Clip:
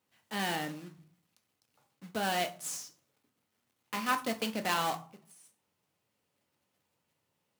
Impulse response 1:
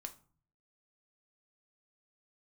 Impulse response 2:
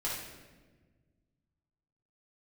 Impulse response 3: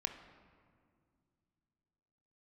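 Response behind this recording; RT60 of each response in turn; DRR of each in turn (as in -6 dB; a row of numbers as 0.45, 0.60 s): 1; 0.45, 1.4, 2.2 s; 5.5, -7.0, 5.5 dB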